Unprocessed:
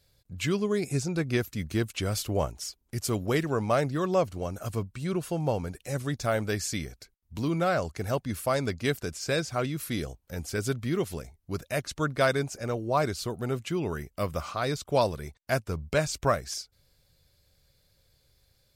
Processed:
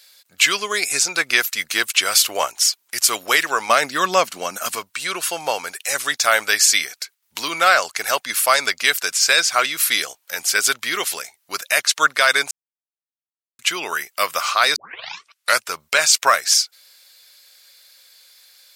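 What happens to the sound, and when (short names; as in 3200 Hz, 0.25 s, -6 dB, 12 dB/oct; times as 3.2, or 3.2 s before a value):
3.69–4.76 bell 210 Hz +13 dB 0.89 oct
12.51–13.59 mute
14.76 tape start 0.86 s
whole clip: HPF 1400 Hz 12 dB/oct; maximiser +21.5 dB; gain -1 dB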